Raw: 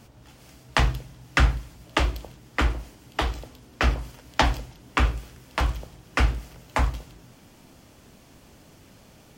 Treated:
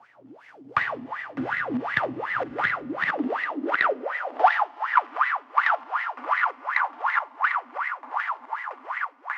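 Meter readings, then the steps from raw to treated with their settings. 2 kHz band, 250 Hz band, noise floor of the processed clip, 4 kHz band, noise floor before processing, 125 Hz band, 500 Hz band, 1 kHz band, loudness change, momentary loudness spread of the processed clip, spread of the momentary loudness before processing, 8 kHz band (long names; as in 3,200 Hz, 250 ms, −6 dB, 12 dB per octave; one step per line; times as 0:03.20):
+6.0 dB, +1.0 dB, −52 dBFS, −9.0 dB, −53 dBFS, below −20 dB, +3.0 dB, +7.5 dB, +1.0 dB, 8 LU, 14 LU, below −20 dB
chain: feedback delay that plays each chunk backwards 634 ms, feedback 71%, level −1 dB
high-pass filter 75 Hz
high-shelf EQ 6,600 Hz −7 dB
four-comb reverb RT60 2.2 s, combs from 33 ms, DRR 2 dB
leveller curve on the samples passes 1
LFO wah 2.7 Hz 240–2,000 Hz, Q 12
parametric band 140 Hz −8.5 dB 2.2 octaves
harmonic generator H 2 −11 dB, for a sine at −13 dBFS
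high-pass filter sweep 120 Hz → 1,000 Hz, 0:02.72–0:04.72
multiband upward and downward compressor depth 40%
level +8 dB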